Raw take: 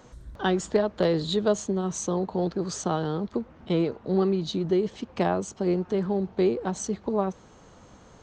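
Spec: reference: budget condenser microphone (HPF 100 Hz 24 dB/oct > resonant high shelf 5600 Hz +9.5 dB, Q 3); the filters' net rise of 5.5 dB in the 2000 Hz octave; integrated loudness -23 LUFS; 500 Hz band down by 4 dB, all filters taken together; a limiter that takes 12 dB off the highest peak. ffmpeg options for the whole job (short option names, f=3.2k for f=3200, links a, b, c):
-af "equalizer=f=500:t=o:g=-6,equalizer=f=2k:t=o:g=9,alimiter=limit=-21.5dB:level=0:latency=1,highpass=f=100:w=0.5412,highpass=f=100:w=1.3066,highshelf=f=5.6k:t=q:w=3:g=9.5,volume=5.5dB"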